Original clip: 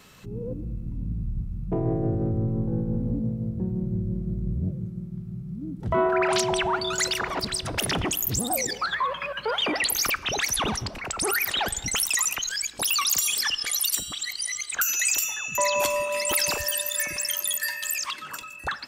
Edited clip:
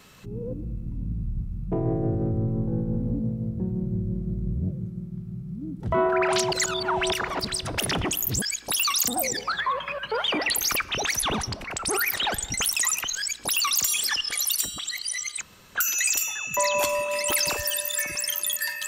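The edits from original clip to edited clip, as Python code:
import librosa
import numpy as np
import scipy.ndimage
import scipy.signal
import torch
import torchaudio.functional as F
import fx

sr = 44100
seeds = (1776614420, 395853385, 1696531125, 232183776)

y = fx.edit(x, sr, fx.reverse_span(start_s=6.52, length_s=0.6),
    fx.duplicate(start_s=12.53, length_s=0.66, to_s=8.42),
    fx.insert_room_tone(at_s=14.76, length_s=0.33), tone=tone)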